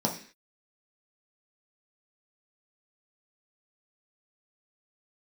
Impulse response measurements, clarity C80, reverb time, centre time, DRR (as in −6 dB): 14.0 dB, 0.45 s, 18 ms, −1.5 dB